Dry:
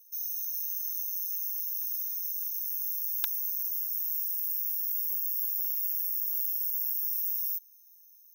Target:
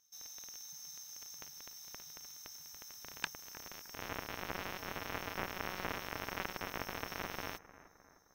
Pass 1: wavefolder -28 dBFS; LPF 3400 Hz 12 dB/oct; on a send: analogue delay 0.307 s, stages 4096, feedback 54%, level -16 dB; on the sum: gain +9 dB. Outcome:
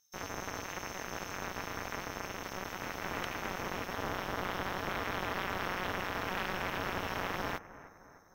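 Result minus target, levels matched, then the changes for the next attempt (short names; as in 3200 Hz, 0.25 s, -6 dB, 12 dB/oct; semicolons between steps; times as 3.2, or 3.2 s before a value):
wavefolder: distortion +13 dB
change: wavefolder -21.5 dBFS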